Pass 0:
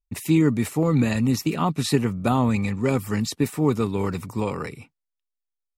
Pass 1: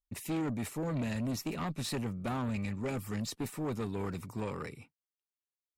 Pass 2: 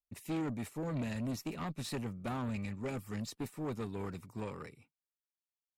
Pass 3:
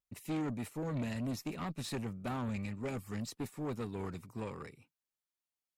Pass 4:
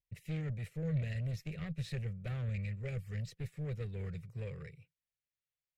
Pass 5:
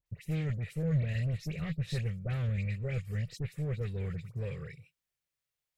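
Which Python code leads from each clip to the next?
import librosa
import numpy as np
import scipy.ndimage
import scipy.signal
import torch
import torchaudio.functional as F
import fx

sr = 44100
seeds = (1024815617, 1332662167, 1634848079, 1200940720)

y1 = fx.tube_stage(x, sr, drive_db=22.0, bias=0.3)
y1 = y1 * librosa.db_to_amplitude(-8.0)
y2 = fx.upward_expand(y1, sr, threshold_db=-49.0, expansion=1.5)
y2 = y2 * librosa.db_to_amplitude(-2.0)
y3 = fx.vibrato(y2, sr, rate_hz=1.9, depth_cents=56.0)
y4 = fx.curve_eq(y3, sr, hz=(160.0, 260.0, 500.0, 940.0, 1900.0, 9400.0), db=(0, -27, -6, -27, -5, -18))
y4 = y4 * librosa.db_to_amplitude(5.5)
y5 = fx.dispersion(y4, sr, late='highs', ms=66.0, hz=2100.0)
y5 = y5 * librosa.db_to_amplitude(5.0)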